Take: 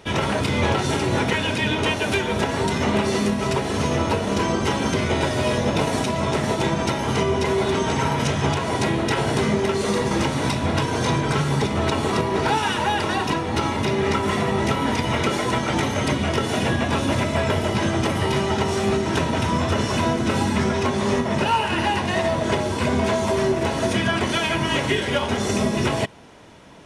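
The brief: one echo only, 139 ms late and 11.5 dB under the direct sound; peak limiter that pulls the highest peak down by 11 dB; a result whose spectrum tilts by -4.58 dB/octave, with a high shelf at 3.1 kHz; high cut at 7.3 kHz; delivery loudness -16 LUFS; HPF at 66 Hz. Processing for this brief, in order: high-pass 66 Hz; low-pass 7.3 kHz; treble shelf 3.1 kHz +5 dB; peak limiter -17.5 dBFS; delay 139 ms -11.5 dB; trim +10 dB

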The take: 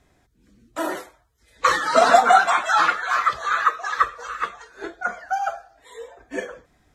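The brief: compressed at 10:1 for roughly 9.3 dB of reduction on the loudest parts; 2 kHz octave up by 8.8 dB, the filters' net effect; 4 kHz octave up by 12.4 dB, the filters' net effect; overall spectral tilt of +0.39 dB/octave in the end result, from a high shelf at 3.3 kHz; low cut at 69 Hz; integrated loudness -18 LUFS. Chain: high-pass 69 Hz; peaking EQ 2 kHz +8.5 dB; treble shelf 3.3 kHz +8.5 dB; peaking EQ 4 kHz +6.5 dB; compression 10:1, threshold -16 dBFS; trim +3.5 dB

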